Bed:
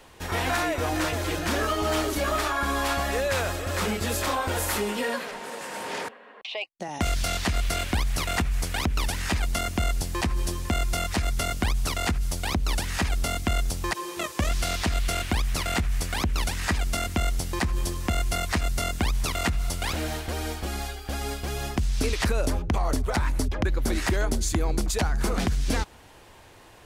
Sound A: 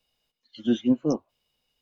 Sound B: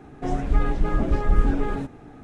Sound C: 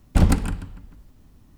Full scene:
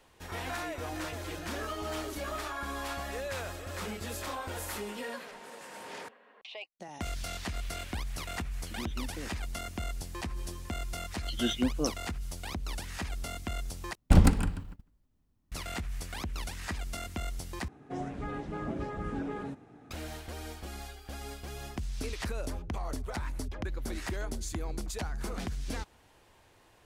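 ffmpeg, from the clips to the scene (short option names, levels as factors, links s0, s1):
-filter_complex "[1:a]asplit=2[s0][s1];[0:a]volume=0.282[s2];[s0]acompressor=threshold=0.0282:ratio=6:attack=3.2:release=140:knee=1:detection=peak[s3];[s1]tiltshelf=f=1100:g=-9[s4];[3:a]agate=range=0.112:threshold=0.01:ratio=16:release=100:detection=peak[s5];[2:a]highpass=98[s6];[s2]asplit=3[s7][s8][s9];[s7]atrim=end=13.954[s10];[s5]atrim=end=1.57,asetpts=PTS-STARTPTS,volume=0.708[s11];[s8]atrim=start=15.516:end=17.684[s12];[s6]atrim=end=2.23,asetpts=PTS-STARTPTS,volume=0.355[s13];[s9]atrim=start=19.906[s14];[s3]atrim=end=1.81,asetpts=PTS-STARTPTS,volume=0.447,afade=t=in:d=0.004:c=hsin,afade=t=out:st=1.806:d=0.004:c=hsin,adelay=8120[s15];[s4]atrim=end=1.81,asetpts=PTS-STARTPTS,volume=0.944,afade=t=in:d=0.004:c=hsin,afade=t=out:st=1.806:d=0.004:c=hsin,adelay=473634S[s16];[s10][s11]acrossfade=d=0.004:c1=hsin:c2=hsin[s17];[s17][s12]acrossfade=d=0.004:c1=hsin:c2=hsin[s18];[s18][s13]acrossfade=d=0.004:c1=hsin:c2=hsin[s19];[s19][s14]acrossfade=d=0.004:c1=hsin:c2=hsin[s20];[s20][s15][s16]amix=inputs=3:normalize=0"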